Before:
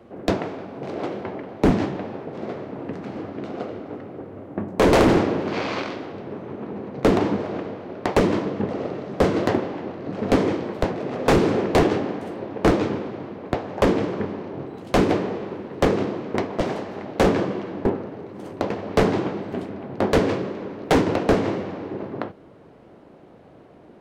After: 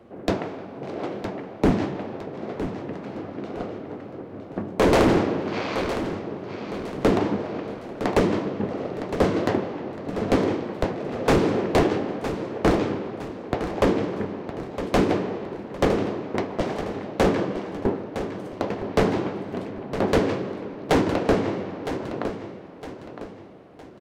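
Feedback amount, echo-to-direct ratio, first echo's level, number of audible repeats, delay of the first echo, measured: 39%, -10.0 dB, -10.5 dB, 3, 0.961 s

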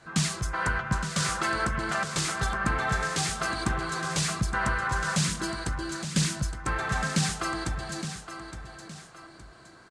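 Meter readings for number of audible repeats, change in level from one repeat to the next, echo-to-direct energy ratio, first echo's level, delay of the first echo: 2, -8.5 dB, -9.5 dB, -10.0 dB, 0.866 s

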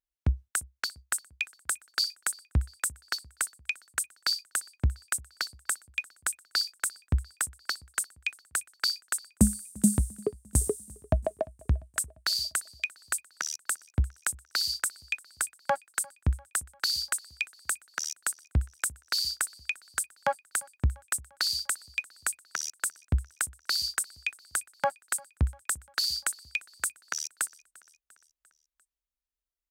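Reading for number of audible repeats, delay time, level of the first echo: 3, 0.347 s, -24.0 dB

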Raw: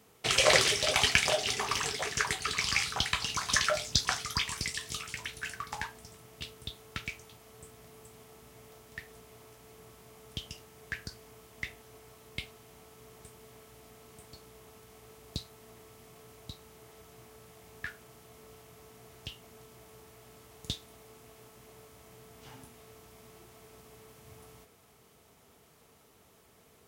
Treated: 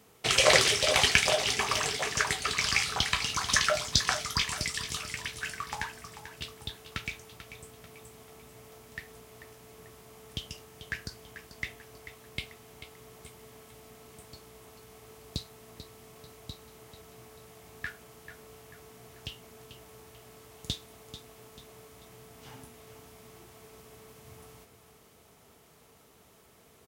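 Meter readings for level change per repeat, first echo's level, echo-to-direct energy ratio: -7.5 dB, -12.0 dB, -11.0 dB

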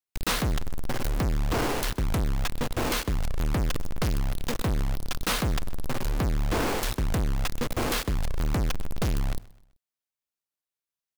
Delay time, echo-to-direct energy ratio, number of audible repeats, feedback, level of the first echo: 0.128 s, -21.0 dB, 2, 40%, -21.5 dB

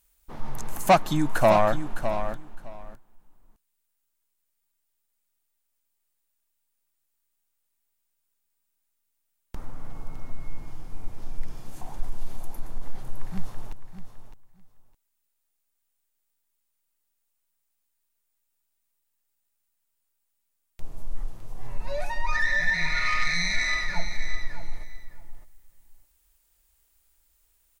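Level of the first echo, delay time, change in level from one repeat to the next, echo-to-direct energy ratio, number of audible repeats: -10.0 dB, 0.61 s, -16.0 dB, -10.0 dB, 2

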